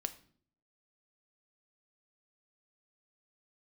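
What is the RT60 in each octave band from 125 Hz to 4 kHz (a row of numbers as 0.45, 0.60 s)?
0.75, 0.75, 0.60, 0.45, 0.45, 0.45 s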